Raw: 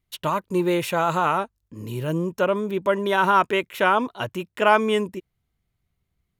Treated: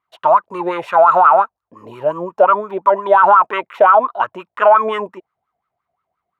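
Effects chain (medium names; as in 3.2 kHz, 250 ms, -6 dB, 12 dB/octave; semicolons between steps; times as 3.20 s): wah-wah 5.7 Hz 640–1300 Hz, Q 10; loudness maximiser +25.5 dB; trim -1 dB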